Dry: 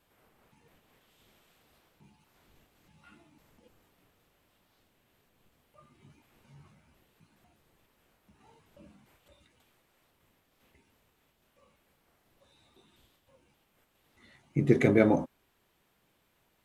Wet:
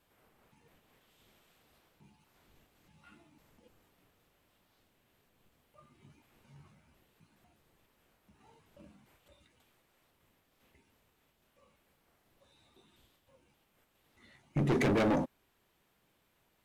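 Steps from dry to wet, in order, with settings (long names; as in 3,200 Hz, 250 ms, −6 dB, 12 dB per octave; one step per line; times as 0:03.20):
leveller curve on the samples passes 1
soft clipping −25 dBFS, distortion −6 dB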